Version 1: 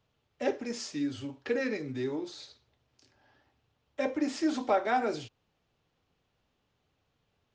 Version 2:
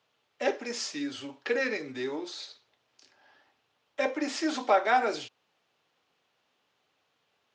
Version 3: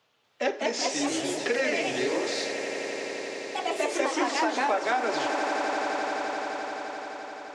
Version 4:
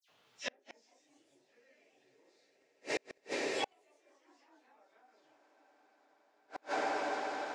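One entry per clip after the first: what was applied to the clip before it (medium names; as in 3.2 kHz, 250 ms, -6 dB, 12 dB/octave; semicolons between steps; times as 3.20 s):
frequency weighting A; trim +5 dB
ever faster or slower copies 243 ms, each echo +2 st, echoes 3; echo with a slow build-up 86 ms, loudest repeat 8, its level -17 dB; compression 6:1, threshold -27 dBFS, peak gain reduction 10 dB; trim +4.5 dB
phase randomisation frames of 100 ms; phase dispersion lows, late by 90 ms, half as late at 2.8 kHz; inverted gate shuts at -22 dBFS, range -41 dB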